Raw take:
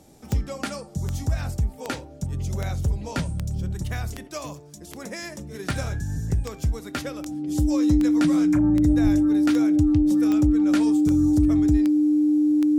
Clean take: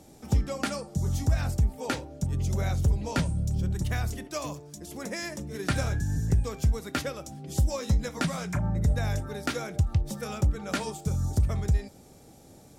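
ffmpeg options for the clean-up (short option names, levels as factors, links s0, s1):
-filter_complex "[0:a]adeclick=t=4,bandreject=f=300:w=30,asplit=3[s0][s1][s2];[s0]afade=t=out:st=9.03:d=0.02[s3];[s1]highpass=f=140:w=0.5412,highpass=f=140:w=1.3066,afade=t=in:st=9.03:d=0.02,afade=t=out:st=9.15:d=0.02[s4];[s2]afade=t=in:st=9.15:d=0.02[s5];[s3][s4][s5]amix=inputs=3:normalize=0"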